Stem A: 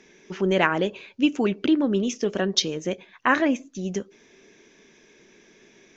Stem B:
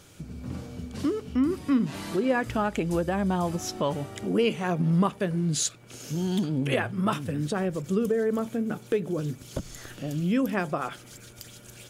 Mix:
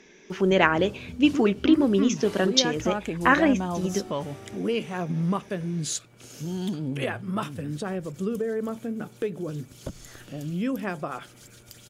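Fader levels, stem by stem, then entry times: +1.0 dB, -3.0 dB; 0.00 s, 0.30 s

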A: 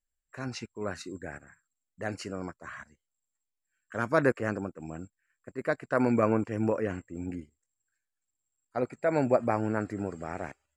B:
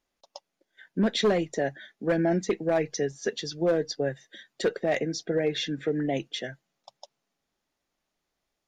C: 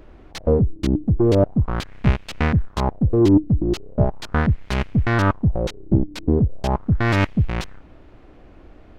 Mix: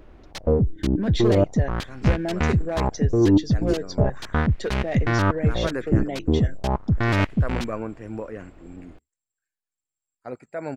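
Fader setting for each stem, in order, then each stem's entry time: -5.0 dB, -3.0 dB, -2.5 dB; 1.50 s, 0.00 s, 0.00 s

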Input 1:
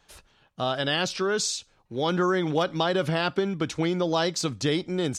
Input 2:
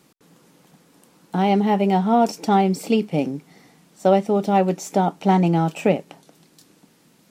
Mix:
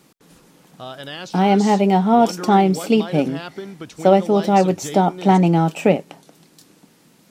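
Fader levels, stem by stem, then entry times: -7.0 dB, +3.0 dB; 0.20 s, 0.00 s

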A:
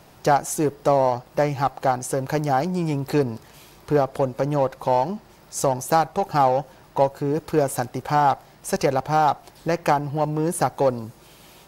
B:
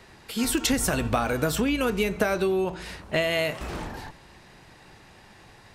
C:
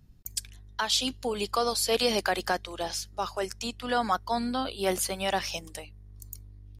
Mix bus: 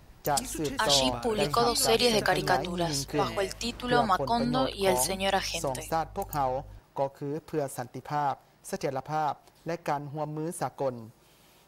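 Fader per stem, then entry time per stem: -10.5 dB, -15.0 dB, +1.5 dB; 0.00 s, 0.00 s, 0.00 s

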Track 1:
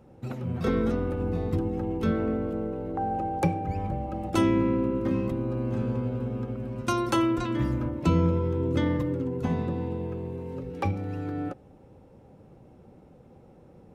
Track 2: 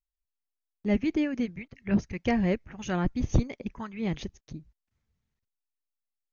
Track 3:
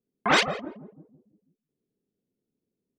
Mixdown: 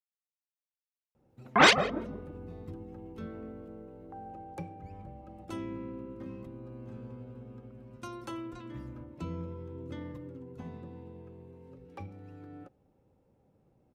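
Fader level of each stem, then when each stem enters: -16.0 dB, mute, +1.5 dB; 1.15 s, mute, 1.30 s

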